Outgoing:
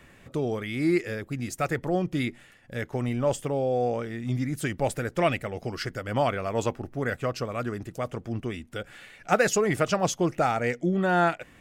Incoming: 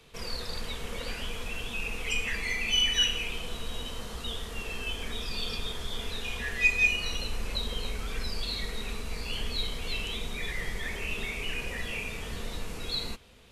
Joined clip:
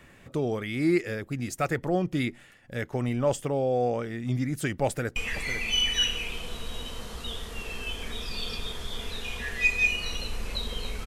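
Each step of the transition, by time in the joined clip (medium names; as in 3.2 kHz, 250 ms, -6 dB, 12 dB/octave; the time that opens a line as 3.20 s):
outgoing
4.86–5.16 s: echo throw 500 ms, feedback 20%, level -10 dB
5.16 s: go over to incoming from 2.16 s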